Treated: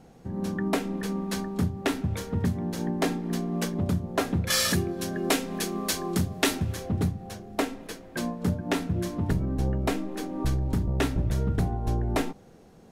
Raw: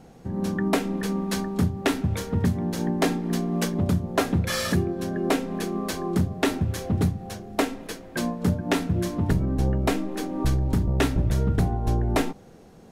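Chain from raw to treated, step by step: 4.5–6.74 high shelf 2100 Hz +11 dB; gain -3.5 dB

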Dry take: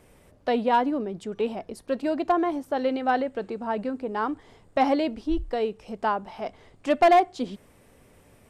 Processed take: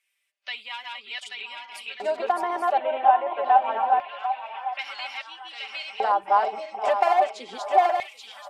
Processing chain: regenerating reverse delay 0.416 s, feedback 49%, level 0 dB; spectral noise reduction 16 dB; 2.77–4.79 rippled Chebyshev low-pass 3600 Hz, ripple 6 dB; compressor, threshold -22 dBFS, peak gain reduction 10.5 dB; comb 5.1 ms; LFO high-pass square 0.25 Hz 760–2500 Hz; on a send: delay with a stepping band-pass 0.744 s, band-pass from 910 Hz, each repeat 0.7 oct, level -9 dB

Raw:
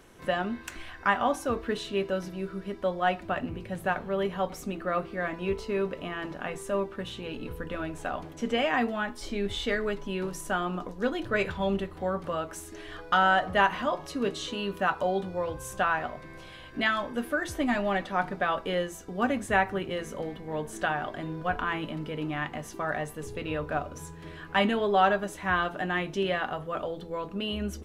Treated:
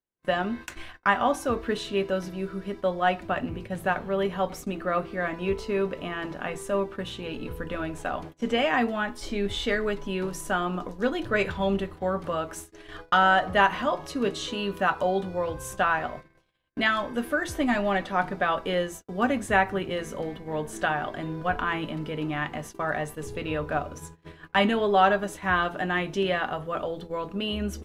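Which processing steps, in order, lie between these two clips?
gate -41 dBFS, range -43 dB; gain +2.5 dB

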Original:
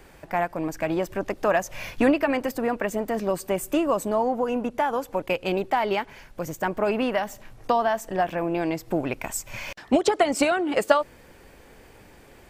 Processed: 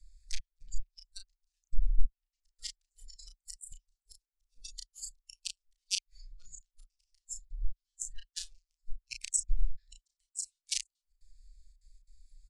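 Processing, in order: Wiener smoothing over 15 samples; flipped gate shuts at -16 dBFS, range -41 dB; step gate "xxxxxx.xx." 174 bpm -24 dB; inverse Chebyshev band-stop 190–1100 Hz, stop band 80 dB; bell 1200 Hz +8 dB 2.6 oct; treble ducked by the level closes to 1400 Hz, closed at -40 dBFS; steep low-pass 10000 Hz 36 dB/oct; high shelf 7000 Hz +7.5 dB; doubler 33 ms -5 dB; in parallel at 0 dB: compressor, threshold -52 dBFS, peak gain reduction 19.5 dB; on the sum: spectral noise reduction 19 dB; gain +17 dB

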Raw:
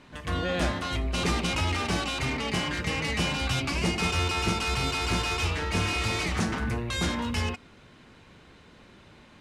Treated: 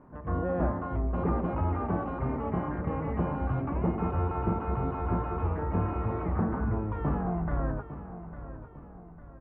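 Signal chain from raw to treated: tape stop at the end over 2.80 s; inverse Chebyshev low-pass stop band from 6500 Hz, stop band 80 dB; feedback echo 0.852 s, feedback 44%, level -13 dB

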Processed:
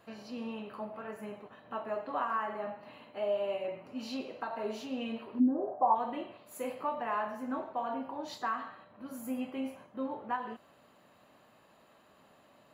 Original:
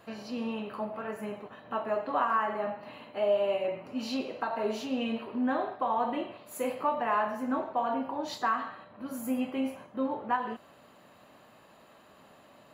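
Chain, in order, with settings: 5.39–5.94 synth low-pass 260 Hz -> 1000 Hz, resonance Q 4; gain -5.5 dB

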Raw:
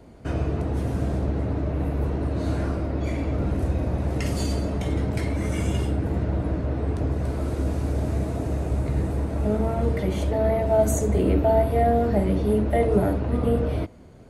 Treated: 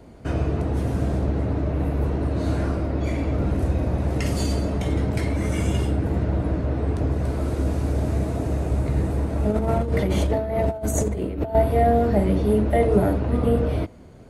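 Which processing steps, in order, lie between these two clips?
9.51–11.55 negative-ratio compressor -24 dBFS, ratio -0.5; gain +2 dB

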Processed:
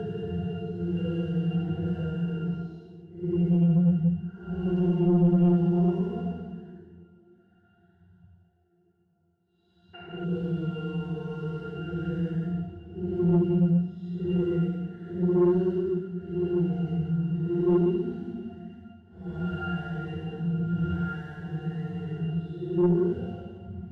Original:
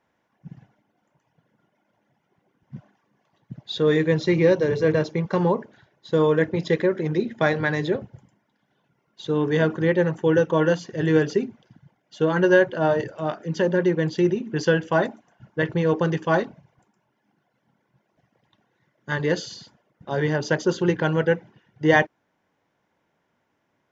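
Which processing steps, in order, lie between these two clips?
block floating point 3-bit; low shelf 300 Hz +10 dB; limiter -10.5 dBFS, peak gain reduction 10 dB; Paulstretch 7.1×, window 0.10 s, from 4.68; painted sound noise, 9.93–10.25, 250–2900 Hz -31 dBFS; octave resonator F, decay 0.18 s; soft clip -17 dBFS, distortion -17 dB; gain +2 dB

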